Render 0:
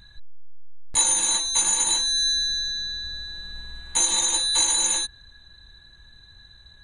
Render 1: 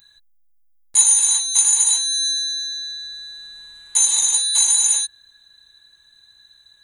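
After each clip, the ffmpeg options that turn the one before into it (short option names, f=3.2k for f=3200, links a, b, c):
-af "aemphasis=mode=production:type=riaa,volume=-6dB"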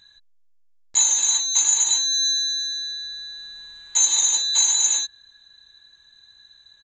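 -af "aresample=16000,aresample=44100"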